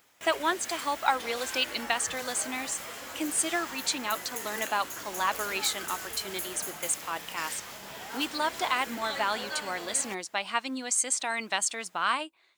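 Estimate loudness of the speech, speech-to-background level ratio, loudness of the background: -30.5 LUFS, 7.5 dB, -38.0 LUFS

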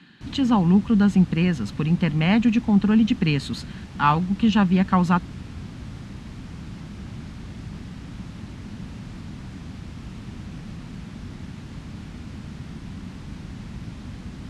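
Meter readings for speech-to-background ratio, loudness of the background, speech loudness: 17.0 dB, -37.5 LUFS, -20.5 LUFS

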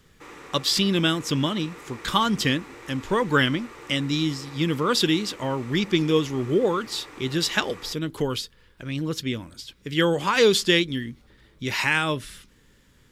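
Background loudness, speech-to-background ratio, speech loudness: -43.5 LUFS, 19.5 dB, -24.0 LUFS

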